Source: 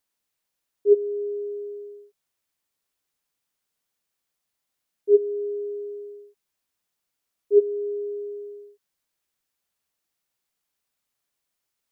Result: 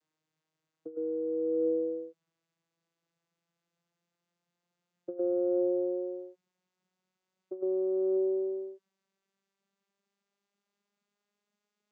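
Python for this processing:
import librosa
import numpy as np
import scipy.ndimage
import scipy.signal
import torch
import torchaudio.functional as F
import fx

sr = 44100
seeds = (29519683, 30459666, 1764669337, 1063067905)

y = fx.vocoder_glide(x, sr, note=51, semitones=5)
y = fx.over_compress(y, sr, threshold_db=-32.0, ratio=-1.0)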